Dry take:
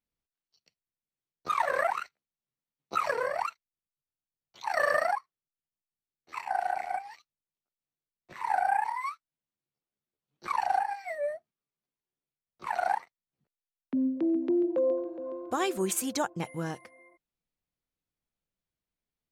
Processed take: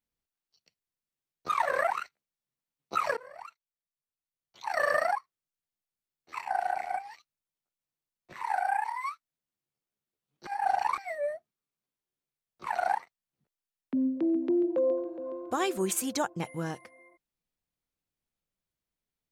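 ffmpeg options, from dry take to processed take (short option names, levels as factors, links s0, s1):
-filter_complex "[0:a]asettb=1/sr,asplit=3[s0][s1][s2];[s0]atrim=end=8.434[s3];[s1]atrim=start=8.43:end=9.05,asetpts=PTS-STARTPTS,afade=t=in:d=0.004:c=qsin,afade=t=out:st=0.616:d=0.004:c=qsin,highpass=f=660:p=1[s4];[s2]atrim=start=9.046[s5];[s3][s4]acrossfade=d=0.004:c1=hsin:c2=qsin[s6];[s6][s5]acrossfade=d=0.004:c1=qsin:c2=hsin,asplit=4[s7][s8][s9][s10];[s7]atrim=end=3.17,asetpts=PTS-STARTPTS,afade=t=out:st=3.166:d=0.004:c=hsin:silence=0.0794328[s11];[s8]atrim=start=3.17:end=10.472,asetpts=PTS-STARTPTS,afade=t=in:d=1.87:silence=0.0794328[s12];[s9]atrim=start=10.468:end=10.982,asetpts=PTS-STARTPTS,areverse[s13];[s10]atrim=start=10.978[s14];[s11][s12]concat=n=2:v=0:a=1[s15];[s15][s13]acrossfade=d=0.004:c1=hsin:c2=hsin[s16];[s16][s14]acrossfade=d=0.004:c1=hsin:c2=hsin"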